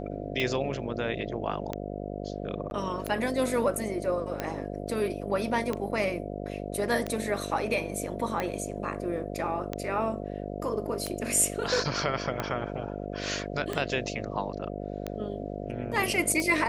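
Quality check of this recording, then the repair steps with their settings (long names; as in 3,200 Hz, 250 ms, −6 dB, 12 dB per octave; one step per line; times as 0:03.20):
mains buzz 50 Hz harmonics 14 −36 dBFS
scratch tick 45 rpm −16 dBFS
0:02.70–0:02.71: drop-out 11 ms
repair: click removal
hum removal 50 Hz, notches 14
repair the gap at 0:02.70, 11 ms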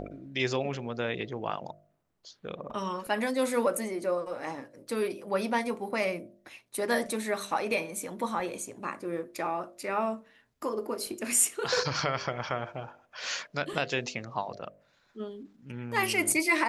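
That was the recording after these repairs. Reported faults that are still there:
none of them is left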